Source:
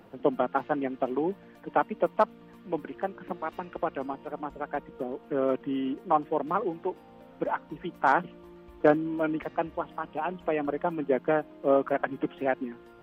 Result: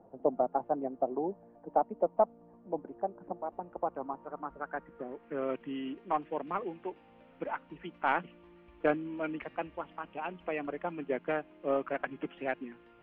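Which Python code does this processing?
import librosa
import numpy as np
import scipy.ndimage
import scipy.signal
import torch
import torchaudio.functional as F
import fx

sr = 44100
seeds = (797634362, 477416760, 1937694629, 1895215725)

y = fx.tracing_dist(x, sr, depth_ms=0.031)
y = fx.filter_sweep_lowpass(y, sr, from_hz=730.0, to_hz=2600.0, start_s=3.57, end_s=5.56, q=2.4)
y = y * librosa.db_to_amplitude(-8.0)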